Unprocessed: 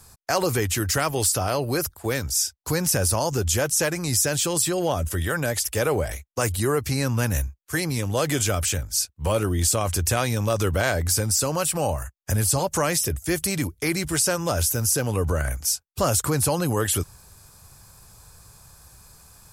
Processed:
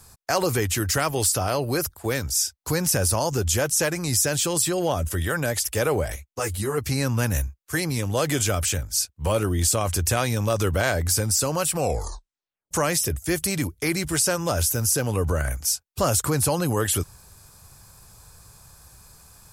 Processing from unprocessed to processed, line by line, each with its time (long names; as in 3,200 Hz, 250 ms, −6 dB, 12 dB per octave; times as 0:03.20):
0:06.16–0:06.78: string-ensemble chorus
0:11.77: tape stop 0.94 s